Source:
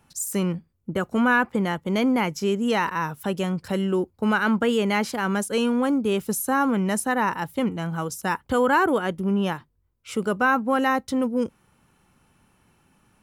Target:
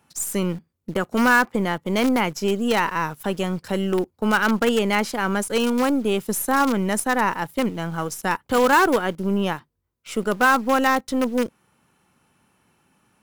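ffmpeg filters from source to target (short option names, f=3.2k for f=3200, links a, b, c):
-filter_complex "[0:a]highpass=f=160:p=1,asplit=2[a][b];[b]acrusher=bits=4:dc=4:mix=0:aa=0.000001,volume=-6dB[c];[a][c]amix=inputs=2:normalize=0"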